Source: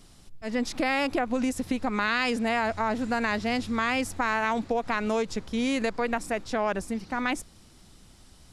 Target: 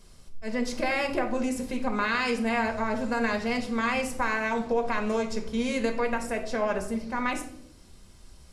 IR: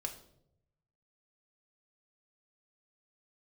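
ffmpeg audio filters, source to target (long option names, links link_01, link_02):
-filter_complex "[0:a]equalizer=frequency=3500:width_type=o:width=0.23:gain=-4[link_01];[1:a]atrim=start_sample=2205,asetrate=41895,aresample=44100[link_02];[link_01][link_02]afir=irnorm=-1:irlink=0"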